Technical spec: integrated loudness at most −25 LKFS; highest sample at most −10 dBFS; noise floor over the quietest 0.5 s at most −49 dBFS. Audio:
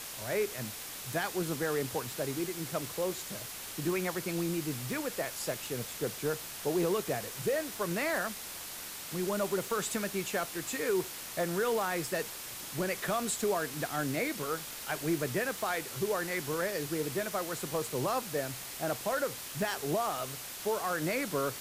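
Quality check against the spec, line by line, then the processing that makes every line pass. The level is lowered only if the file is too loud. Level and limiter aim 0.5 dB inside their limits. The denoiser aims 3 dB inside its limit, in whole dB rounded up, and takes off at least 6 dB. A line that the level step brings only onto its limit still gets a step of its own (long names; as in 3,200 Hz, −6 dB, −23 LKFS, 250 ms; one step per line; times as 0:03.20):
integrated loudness −33.5 LKFS: in spec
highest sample −19.5 dBFS: in spec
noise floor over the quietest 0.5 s −43 dBFS: out of spec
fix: broadband denoise 9 dB, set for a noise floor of −43 dBFS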